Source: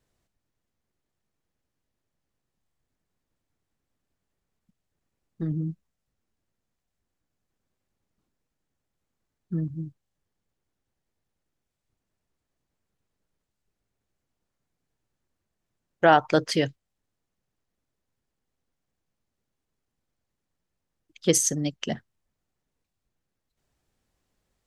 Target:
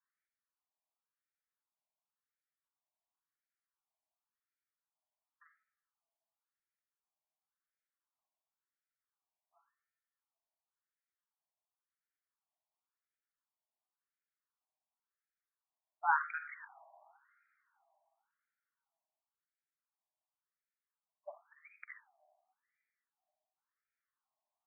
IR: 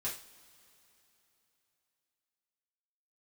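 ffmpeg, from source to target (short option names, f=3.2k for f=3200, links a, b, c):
-filter_complex "[0:a]afreqshift=37,asplit=2[a][b];[1:a]atrim=start_sample=2205,adelay=45[c];[b][c]afir=irnorm=-1:irlink=0,volume=-8.5dB[d];[a][d]amix=inputs=2:normalize=0,afftfilt=real='re*between(b*sr/1024,790*pow(1800/790,0.5+0.5*sin(2*PI*0.93*pts/sr))/1.41,790*pow(1800/790,0.5+0.5*sin(2*PI*0.93*pts/sr))*1.41)':imag='im*between(b*sr/1024,790*pow(1800/790,0.5+0.5*sin(2*PI*0.93*pts/sr))/1.41,790*pow(1800/790,0.5+0.5*sin(2*PI*0.93*pts/sr))*1.41)':win_size=1024:overlap=0.75,volume=-8dB"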